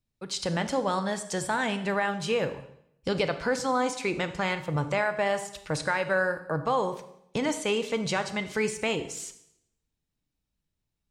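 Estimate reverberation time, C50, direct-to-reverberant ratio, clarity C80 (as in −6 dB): 0.75 s, 12.0 dB, 10.0 dB, 14.5 dB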